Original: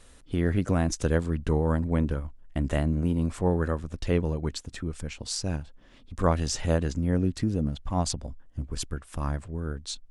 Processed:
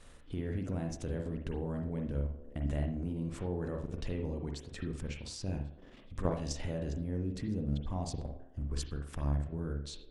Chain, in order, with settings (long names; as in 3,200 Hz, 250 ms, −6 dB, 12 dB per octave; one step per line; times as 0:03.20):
feedback echo with a band-pass in the loop 111 ms, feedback 68%, band-pass 390 Hz, level −15 dB
dynamic equaliser 1,300 Hz, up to −8 dB, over −48 dBFS, Q 1.4
downward compressor 1.5 to 1, threshold −36 dBFS, peak gain reduction 7 dB
high-shelf EQ 5,600 Hz −6 dB
output level in coarse steps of 9 dB
convolution reverb, pre-delay 42 ms, DRR 3 dB